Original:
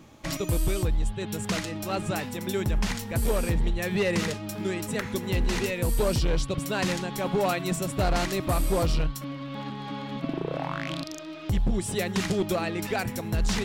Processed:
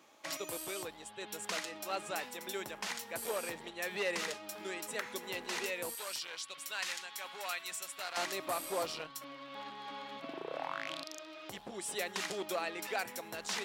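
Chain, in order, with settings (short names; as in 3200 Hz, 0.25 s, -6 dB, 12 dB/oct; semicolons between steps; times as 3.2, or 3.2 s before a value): HPF 540 Hz 12 dB/oct, from 5.95 s 1400 Hz, from 8.17 s 540 Hz; gain -5.5 dB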